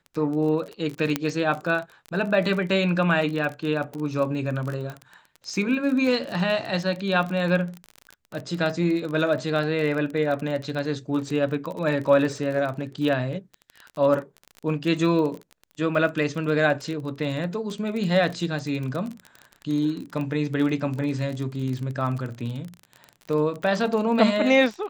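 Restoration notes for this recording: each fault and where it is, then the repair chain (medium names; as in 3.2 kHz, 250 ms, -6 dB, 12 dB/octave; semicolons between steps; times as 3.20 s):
crackle 29 per s -29 dBFS
1.16 s: pop -7 dBFS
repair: de-click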